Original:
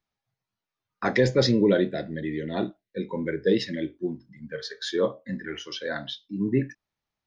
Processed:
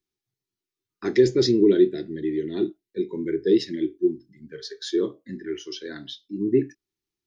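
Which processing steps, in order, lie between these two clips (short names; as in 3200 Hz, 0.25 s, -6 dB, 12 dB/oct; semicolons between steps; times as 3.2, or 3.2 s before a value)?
EQ curve 220 Hz 0 dB, 380 Hz +15 dB, 540 Hz -12 dB, 5800 Hz +6 dB; gain -4.5 dB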